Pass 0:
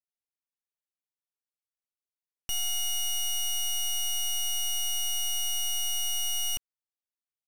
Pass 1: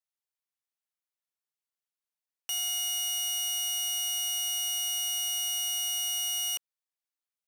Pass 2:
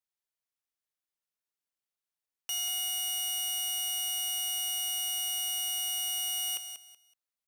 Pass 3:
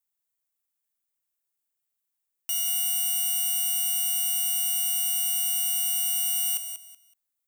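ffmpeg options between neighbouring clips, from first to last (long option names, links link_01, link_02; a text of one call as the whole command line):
ffmpeg -i in.wav -af "highpass=570" out.wav
ffmpeg -i in.wav -af "aecho=1:1:188|376|564:0.355|0.0852|0.0204,volume=-1.5dB" out.wav
ffmpeg -i in.wav -af "aexciter=amount=3.6:drive=1.2:freq=7100" out.wav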